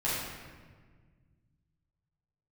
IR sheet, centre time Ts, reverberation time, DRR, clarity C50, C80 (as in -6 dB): 96 ms, 1.6 s, -9.5 dB, -1.5 dB, 1.5 dB